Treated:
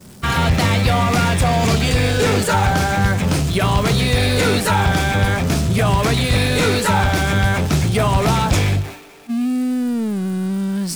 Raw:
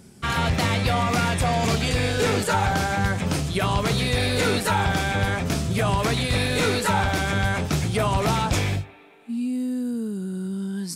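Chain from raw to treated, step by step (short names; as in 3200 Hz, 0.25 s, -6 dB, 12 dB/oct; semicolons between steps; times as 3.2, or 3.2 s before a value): zero-crossing step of -30 dBFS; expander -28 dBFS; low shelf 180 Hz +3.5 dB; gain +3.5 dB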